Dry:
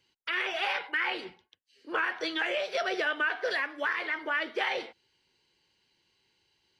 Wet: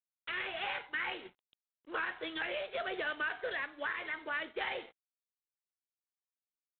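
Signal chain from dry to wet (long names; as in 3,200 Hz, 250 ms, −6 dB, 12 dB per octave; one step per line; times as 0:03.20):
dead-zone distortion −56 dBFS
level −6.5 dB
G.726 24 kbit/s 8,000 Hz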